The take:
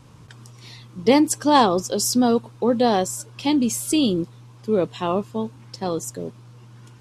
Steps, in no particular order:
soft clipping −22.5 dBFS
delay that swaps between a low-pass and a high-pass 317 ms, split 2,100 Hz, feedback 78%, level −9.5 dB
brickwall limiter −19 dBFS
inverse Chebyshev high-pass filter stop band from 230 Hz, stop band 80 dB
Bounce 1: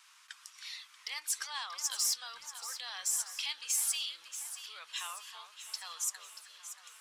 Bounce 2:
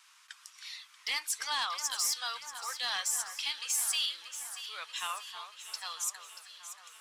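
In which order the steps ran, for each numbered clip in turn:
brickwall limiter, then inverse Chebyshev high-pass filter, then soft clipping, then delay that swaps between a low-pass and a high-pass
inverse Chebyshev high-pass filter, then brickwall limiter, then soft clipping, then delay that swaps between a low-pass and a high-pass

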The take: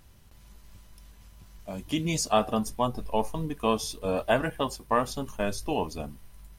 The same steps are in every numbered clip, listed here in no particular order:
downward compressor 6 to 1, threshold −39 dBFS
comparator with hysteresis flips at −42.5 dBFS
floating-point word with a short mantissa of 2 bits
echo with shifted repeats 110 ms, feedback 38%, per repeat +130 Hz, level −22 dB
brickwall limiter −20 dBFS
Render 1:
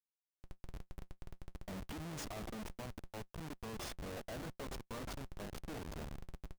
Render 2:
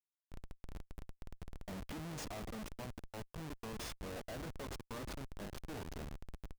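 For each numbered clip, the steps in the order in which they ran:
echo with shifted repeats, then brickwall limiter, then downward compressor, then comparator with hysteresis, then floating-point word with a short mantissa
floating-point word with a short mantissa, then brickwall limiter, then downward compressor, then echo with shifted repeats, then comparator with hysteresis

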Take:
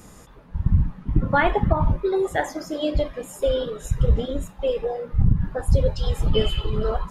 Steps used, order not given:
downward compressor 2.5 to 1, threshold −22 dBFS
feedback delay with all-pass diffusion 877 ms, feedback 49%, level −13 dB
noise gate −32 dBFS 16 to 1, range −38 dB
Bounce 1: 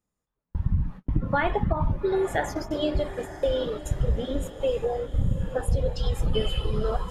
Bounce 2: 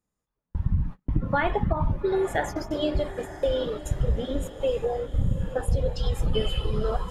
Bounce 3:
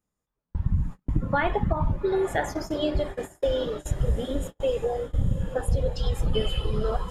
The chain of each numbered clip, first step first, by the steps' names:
noise gate, then downward compressor, then feedback delay with all-pass diffusion
downward compressor, then noise gate, then feedback delay with all-pass diffusion
downward compressor, then feedback delay with all-pass diffusion, then noise gate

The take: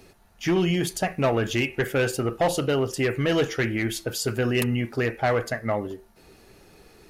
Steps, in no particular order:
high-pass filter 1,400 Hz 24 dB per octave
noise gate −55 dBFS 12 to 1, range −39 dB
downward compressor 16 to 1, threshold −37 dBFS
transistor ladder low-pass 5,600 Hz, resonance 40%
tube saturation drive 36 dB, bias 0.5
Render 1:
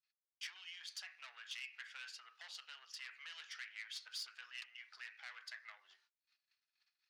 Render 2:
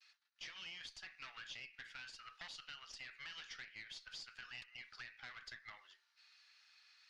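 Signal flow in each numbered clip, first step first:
transistor ladder low-pass, then downward compressor, then noise gate, then tube saturation, then high-pass filter
noise gate, then high-pass filter, then downward compressor, then tube saturation, then transistor ladder low-pass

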